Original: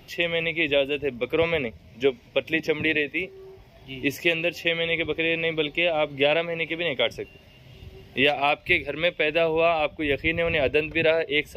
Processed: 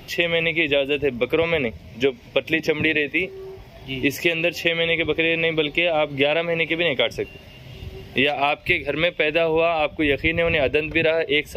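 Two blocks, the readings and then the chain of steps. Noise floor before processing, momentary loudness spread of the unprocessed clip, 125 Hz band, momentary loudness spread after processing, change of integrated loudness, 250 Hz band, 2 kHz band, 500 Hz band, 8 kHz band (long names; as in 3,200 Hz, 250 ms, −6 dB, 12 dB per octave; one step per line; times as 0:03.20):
−51 dBFS, 6 LU, +4.5 dB, 9 LU, +3.0 dB, +4.5 dB, +3.0 dB, +3.0 dB, can't be measured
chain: downward compressor, threshold −24 dBFS, peak gain reduction 9 dB
level +8 dB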